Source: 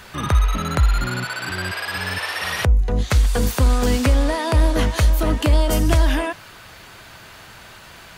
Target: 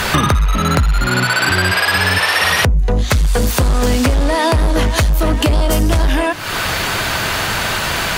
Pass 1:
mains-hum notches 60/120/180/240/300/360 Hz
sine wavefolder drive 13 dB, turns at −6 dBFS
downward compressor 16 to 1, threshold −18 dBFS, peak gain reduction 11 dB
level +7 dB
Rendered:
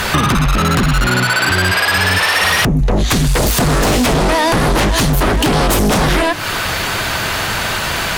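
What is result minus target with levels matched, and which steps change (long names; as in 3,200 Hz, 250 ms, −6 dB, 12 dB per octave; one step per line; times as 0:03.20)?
sine wavefolder: distortion +21 dB
change: sine wavefolder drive 13 dB, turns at 2 dBFS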